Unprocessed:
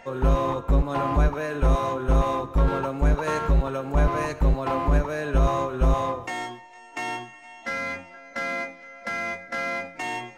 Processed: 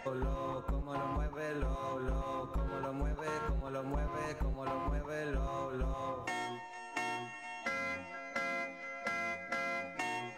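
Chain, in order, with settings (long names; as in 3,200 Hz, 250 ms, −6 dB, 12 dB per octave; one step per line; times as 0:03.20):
downward compressor 6 to 1, threshold −35 dBFS, peak gain reduction 18 dB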